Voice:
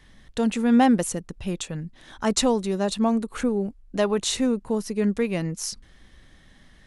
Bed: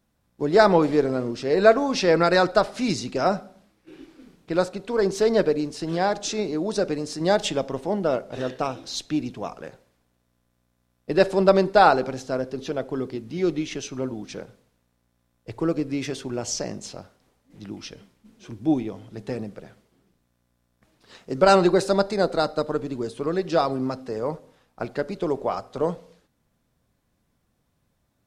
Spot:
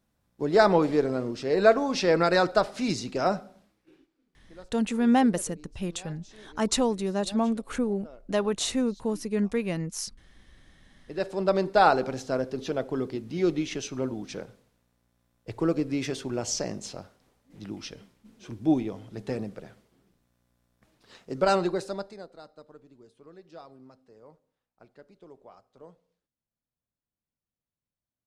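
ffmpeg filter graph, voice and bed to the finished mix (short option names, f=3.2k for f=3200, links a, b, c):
-filter_complex "[0:a]adelay=4350,volume=-3.5dB[a];[1:a]volume=20.5dB,afade=t=out:st=3.56:d=0.52:silence=0.0794328,afade=t=in:st=10.87:d=1.33:silence=0.0630957,afade=t=out:st=20.71:d=1.56:silence=0.0668344[b];[a][b]amix=inputs=2:normalize=0"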